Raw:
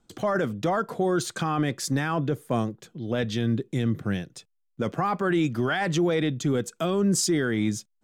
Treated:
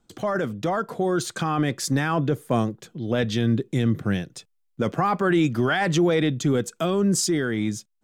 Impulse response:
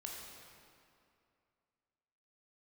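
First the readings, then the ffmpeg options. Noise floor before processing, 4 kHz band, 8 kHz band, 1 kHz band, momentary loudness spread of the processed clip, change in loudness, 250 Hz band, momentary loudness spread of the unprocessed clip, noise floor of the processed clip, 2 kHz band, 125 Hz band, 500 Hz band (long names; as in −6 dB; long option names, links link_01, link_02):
−73 dBFS, +2.5 dB, +1.5 dB, +2.5 dB, 7 LU, +2.5 dB, +2.5 dB, 7 LU, −69 dBFS, +2.5 dB, +3.0 dB, +2.5 dB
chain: -af "dynaudnorm=framelen=430:gausssize=7:maxgain=3.5dB"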